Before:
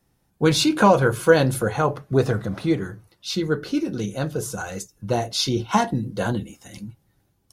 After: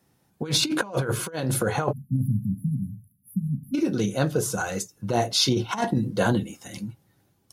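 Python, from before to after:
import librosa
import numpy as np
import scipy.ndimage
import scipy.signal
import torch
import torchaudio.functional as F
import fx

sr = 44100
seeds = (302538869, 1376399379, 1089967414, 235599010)

y = fx.spec_erase(x, sr, start_s=1.92, length_s=1.83, low_hz=260.0, high_hz=10000.0)
y = fx.over_compress(y, sr, threshold_db=-22.0, ratio=-0.5)
y = scipy.signal.sosfilt(scipy.signal.butter(2, 100.0, 'highpass', fs=sr, output='sos'), y)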